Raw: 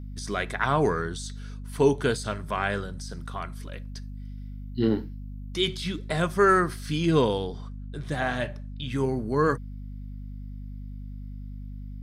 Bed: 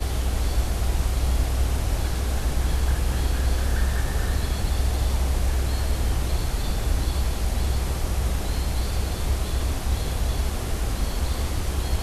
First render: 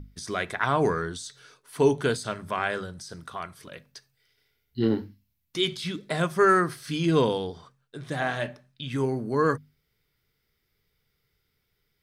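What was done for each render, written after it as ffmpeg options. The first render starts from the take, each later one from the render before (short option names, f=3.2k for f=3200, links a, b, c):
-af "bandreject=f=50:t=h:w=6,bandreject=f=100:t=h:w=6,bandreject=f=150:t=h:w=6,bandreject=f=200:t=h:w=6,bandreject=f=250:t=h:w=6"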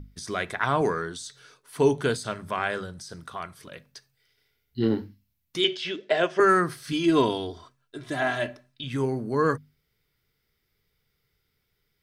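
-filter_complex "[0:a]asettb=1/sr,asplit=3[a][b][c];[a]atrim=end=0.814[d];[b]atrim=start=0.81:end=1.21,asetpts=PTS-STARTPTS,afade=t=in:d=0.004:c=qsin,afade=t=out:st=0.396:d=0.004:c=qsin,highpass=f=180:p=1[e];[c]atrim=start=1.206[f];[d][e]acrossfade=d=0.004:c1=hsin:c2=qsin[g];[g][f]acrossfade=d=0.004:c1=qsin:c2=hsin,asettb=1/sr,asplit=3[h][i][j];[h]atrim=end=5.644[k];[i]atrim=start=5.64:end=6.4,asetpts=PTS-STARTPTS,afade=t=in:d=0.004:c=qsin,afade=t=out:st=0.756:d=0.004:c=qsin,highpass=350,equalizer=f=380:t=q:w=4:g=9,equalizer=f=630:t=q:w=4:g=10,equalizer=f=1.2k:t=q:w=4:g=-5,equalizer=f=1.7k:t=q:w=4:g=6,equalizer=f=2.9k:t=q:w=4:g=10,equalizer=f=4.1k:t=q:w=4:g=-4,lowpass=f=6.3k:w=0.5412,lowpass=f=6.3k:w=1.3066[l];[j]atrim=start=6.396[m];[k][l]acrossfade=d=0.004:c1=hsin:c2=qsin[n];[n][m]acrossfade=d=0.004:c1=qsin:c2=hsin,asettb=1/sr,asplit=3[o][p][q];[o]atrim=end=6.924[r];[p]atrim=start=6.92:end=8.84,asetpts=PTS-STARTPTS,afade=t=in:d=0.004:c=qsin,afade=t=out:st=1.916:d=0.004:c=qsin,aecho=1:1:3:0.65,atrim=end_sample=84672[s];[q]atrim=start=8.836[t];[r][s]acrossfade=d=0.004:c1=hsin:c2=qsin[u];[u][t]acrossfade=d=0.004:c1=qsin:c2=hsin"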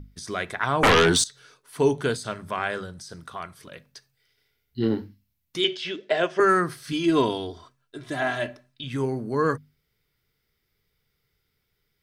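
-filter_complex "[0:a]asettb=1/sr,asplit=3[a][b][c];[a]atrim=end=0.834[d];[b]atrim=start=0.83:end=1.24,asetpts=PTS-STARTPTS,afade=t=in:d=0.004:c=qsin,afade=t=out:st=0.406:d=0.004:c=qsin,aeval=exprs='0.224*sin(PI/2*5.62*val(0)/0.224)':c=same[e];[c]atrim=start=1.236[f];[d][e]acrossfade=d=0.004:c1=hsin:c2=qsin[g];[g][f]acrossfade=d=0.004:c1=qsin:c2=hsin"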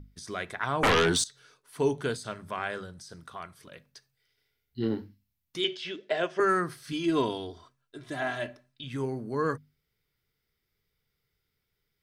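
-af "volume=-5.5dB"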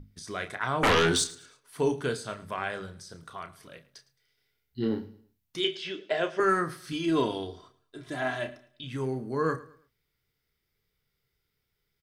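-filter_complex "[0:a]asplit=2[a][b];[b]adelay=31,volume=-9dB[c];[a][c]amix=inputs=2:normalize=0,aecho=1:1:109|218|327:0.106|0.036|0.0122"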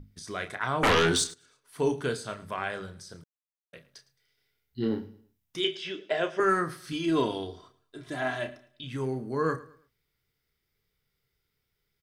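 -filter_complex "[0:a]asettb=1/sr,asplit=3[a][b][c];[a]atrim=end=4.964[d];[b]atrim=start=4.96:end=6.51,asetpts=PTS-STARTPTS,afade=t=in:d=0.004:c=qsin,afade=t=out:st=1.546:d=0.004:c=qsin,bandreject=f=4.3k:w=12[e];[c]atrim=start=6.506[f];[d][e]acrossfade=d=0.004:c1=hsin:c2=qsin[g];[g][f]acrossfade=d=0.004:c1=qsin:c2=hsin,asplit=4[h][i][j][k];[h]atrim=end=1.34,asetpts=PTS-STARTPTS,afade=t=out:st=1.336:d=0.004:c=hsin:silence=0.199526[l];[i]atrim=start=1.34:end=3.24,asetpts=PTS-STARTPTS,afade=t=in:d=0.53:silence=0.199526,afade=t=out:st=1.896:d=0.004:c=hsin[m];[j]atrim=start=3.24:end=3.73,asetpts=PTS-STARTPTS,volume=0[n];[k]atrim=start=3.73,asetpts=PTS-STARTPTS,afade=t=in:d=0.004:c=hsin[o];[l][m][n][o]concat=n=4:v=0:a=1"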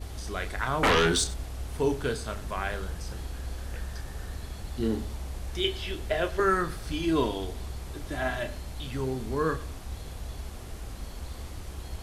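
-filter_complex "[1:a]volume=-13.5dB[a];[0:a][a]amix=inputs=2:normalize=0"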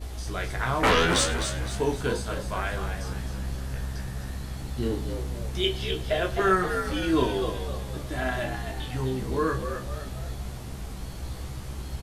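-filter_complex "[0:a]asplit=2[a][b];[b]adelay=16,volume=-4.5dB[c];[a][c]amix=inputs=2:normalize=0,asplit=6[d][e][f][g][h][i];[e]adelay=257,afreqshift=67,volume=-7.5dB[j];[f]adelay=514,afreqshift=134,volume=-14.8dB[k];[g]adelay=771,afreqshift=201,volume=-22.2dB[l];[h]adelay=1028,afreqshift=268,volume=-29.5dB[m];[i]adelay=1285,afreqshift=335,volume=-36.8dB[n];[d][j][k][l][m][n]amix=inputs=6:normalize=0"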